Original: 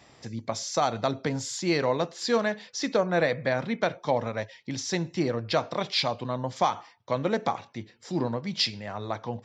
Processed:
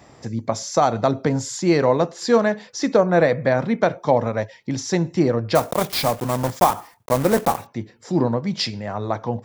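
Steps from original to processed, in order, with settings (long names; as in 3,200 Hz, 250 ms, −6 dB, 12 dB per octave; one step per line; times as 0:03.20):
0:05.55–0:07.68: one scale factor per block 3 bits
parametric band 3,400 Hz −9.5 dB 1.9 octaves
level +9 dB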